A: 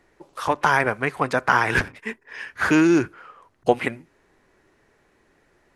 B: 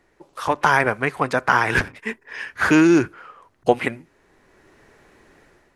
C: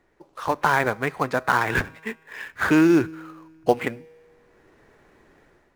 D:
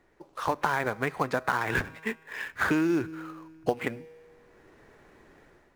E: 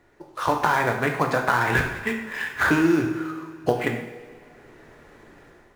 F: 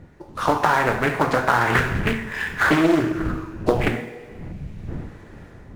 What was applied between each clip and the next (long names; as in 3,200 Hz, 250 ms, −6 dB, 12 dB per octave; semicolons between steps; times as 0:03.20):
automatic gain control gain up to 10 dB; level −1 dB
high-shelf EQ 5,200 Hz −7 dB; tuned comb filter 160 Hz, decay 1.8 s, mix 40%; in parallel at −12 dB: sample-rate reduction 5,300 Hz, jitter 20%
downward compressor 5 to 1, threshold −23 dBFS, peak gain reduction 10.5 dB
convolution reverb, pre-delay 3 ms, DRR 2 dB; level +4.5 dB
wind on the microphone 170 Hz −35 dBFS; gain on a spectral selection 0:04.52–0:04.88, 230–2,100 Hz −8 dB; highs frequency-modulated by the lows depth 0.57 ms; level +2.5 dB